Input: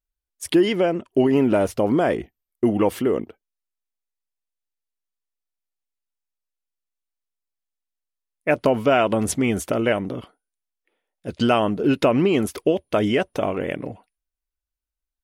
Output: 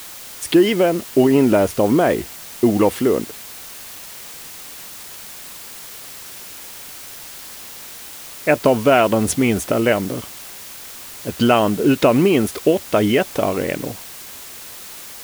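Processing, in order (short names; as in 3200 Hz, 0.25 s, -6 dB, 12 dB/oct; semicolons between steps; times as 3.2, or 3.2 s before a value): added noise white -40 dBFS; gain +4 dB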